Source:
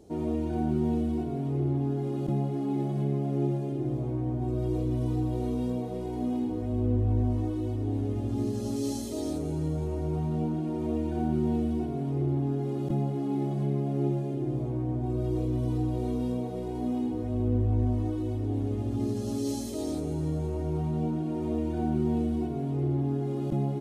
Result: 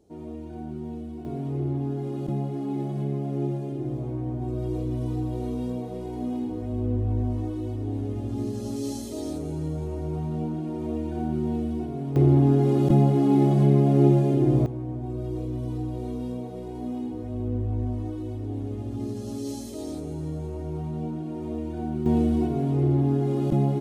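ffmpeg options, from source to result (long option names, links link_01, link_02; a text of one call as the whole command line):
ffmpeg -i in.wav -af "asetnsamples=nb_out_samples=441:pad=0,asendcmd='1.25 volume volume 0dB;12.16 volume volume 10dB;14.66 volume volume -2dB;22.06 volume volume 6dB',volume=-8dB" out.wav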